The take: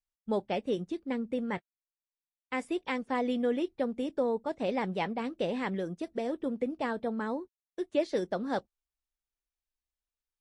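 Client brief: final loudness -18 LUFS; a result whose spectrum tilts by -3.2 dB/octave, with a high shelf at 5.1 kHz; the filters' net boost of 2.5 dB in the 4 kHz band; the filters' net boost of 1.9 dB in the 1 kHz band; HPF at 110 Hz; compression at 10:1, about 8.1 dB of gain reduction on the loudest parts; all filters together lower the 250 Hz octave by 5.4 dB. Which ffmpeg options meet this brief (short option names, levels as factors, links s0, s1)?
-af "highpass=110,equalizer=f=250:t=o:g=-6.5,equalizer=f=1000:t=o:g=3,equalizer=f=4000:t=o:g=6,highshelf=f=5100:g=-7,acompressor=threshold=0.0282:ratio=10,volume=10"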